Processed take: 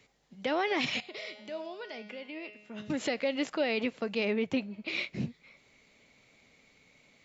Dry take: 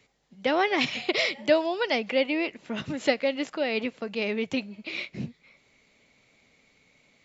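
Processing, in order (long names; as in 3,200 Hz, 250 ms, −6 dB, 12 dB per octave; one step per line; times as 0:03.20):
0:04.25–0:04.88: high-shelf EQ 3,300 Hz −9.5 dB
brickwall limiter −20 dBFS, peak gain reduction 11.5 dB
0:01.00–0:02.90: tuned comb filter 210 Hz, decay 0.88 s, mix 80%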